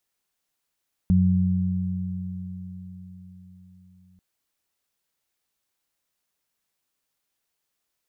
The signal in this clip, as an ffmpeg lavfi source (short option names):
-f lavfi -i "aevalsrc='0.112*pow(10,-3*t/4.78)*sin(2*PI*91.9*t)+0.158*pow(10,-3*t/4.66)*sin(2*PI*183.8*t)':d=3.09:s=44100"